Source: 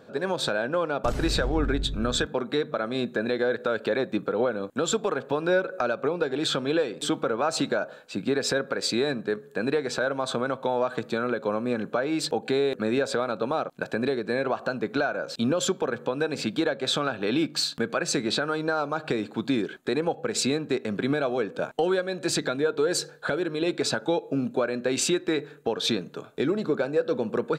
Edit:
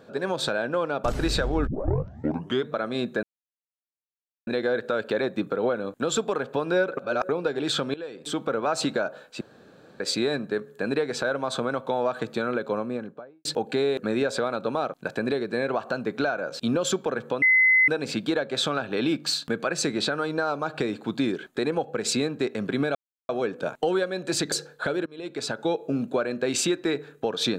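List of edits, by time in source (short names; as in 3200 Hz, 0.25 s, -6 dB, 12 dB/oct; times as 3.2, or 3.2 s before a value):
1.67 tape start 1.03 s
3.23 insert silence 1.24 s
5.73–6.05 reverse
6.7–7.29 fade in, from -18.5 dB
8.17–8.76 room tone
11.38–12.21 studio fade out
16.18 add tone 2040 Hz -15 dBFS 0.46 s
21.25 insert silence 0.34 s
22.48–22.95 cut
23.49–24.16 fade in, from -22 dB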